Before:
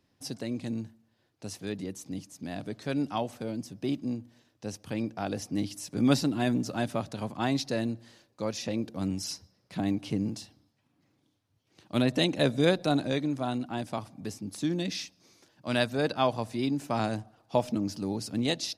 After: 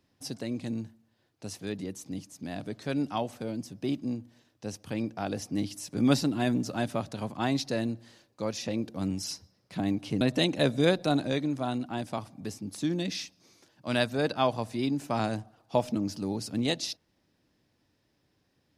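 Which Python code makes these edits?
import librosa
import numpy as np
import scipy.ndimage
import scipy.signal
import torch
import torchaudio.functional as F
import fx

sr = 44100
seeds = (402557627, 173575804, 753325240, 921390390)

y = fx.edit(x, sr, fx.cut(start_s=10.21, length_s=1.8), tone=tone)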